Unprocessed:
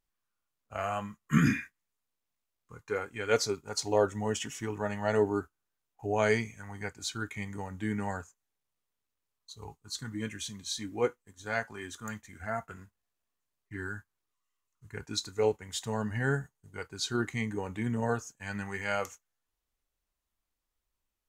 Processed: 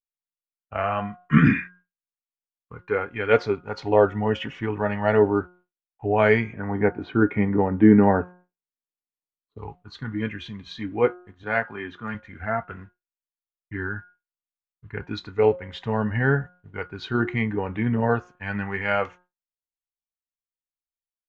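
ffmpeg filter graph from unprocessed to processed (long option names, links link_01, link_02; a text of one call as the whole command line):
ffmpeg -i in.wav -filter_complex "[0:a]asettb=1/sr,asplit=3[link_01][link_02][link_03];[link_01]atrim=end=6.534[link_04];[link_02]atrim=start=6.53:end=9.58,asetpts=PTS-STARTPTS,afade=type=in:duration=0.004:curve=qsin,afade=type=out:start_time=3.046:duration=0.004:curve=qsin,lowpass=2300,equalizer=frequency=340:width=0.53:gain=14[link_05];[link_03]atrim=start=9.576[link_06];[link_04][link_05]acrossfade=duration=0.004:curve1=hsin:curve2=qsin[link_07];[link_07][link_06]acrossfade=duration=0.004:curve1=qsin:curve2=hsin,asettb=1/sr,asplit=3[link_08][link_09][link_10];[link_08]atrim=end=11.434[link_11];[link_09]atrim=start=11.43:end=12.15,asetpts=PTS-STARTPTS,afade=type=in:duration=0.004:curve=qsin,afade=type=out:start_time=0.716:duration=0.004:curve=qsin,highpass=110,lowpass=5100,acompressor=mode=upward:threshold=-47dB:ratio=2.5:attack=3.2:release=140:knee=2.83:detection=peak[link_12];[link_10]atrim=start=12.146[link_13];[link_11][link_12]acrossfade=duration=0.004:curve1=hsin:curve2=qsin[link_14];[link_14][link_13]acrossfade=duration=0.004:curve1=qsin:curve2=hsin,lowpass=frequency=2900:width=0.5412,lowpass=frequency=2900:width=1.3066,bandreject=frequency=179.5:width_type=h:width=4,bandreject=frequency=359:width_type=h:width=4,bandreject=frequency=538.5:width_type=h:width=4,bandreject=frequency=718:width_type=h:width=4,bandreject=frequency=897.5:width_type=h:width=4,bandreject=frequency=1077:width_type=h:width=4,bandreject=frequency=1256.5:width_type=h:width=4,bandreject=frequency=1436:width_type=h:width=4,bandreject=frequency=1615.5:width_type=h:width=4,agate=range=-33dB:threshold=-53dB:ratio=3:detection=peak,volume=8.5dB" out.wav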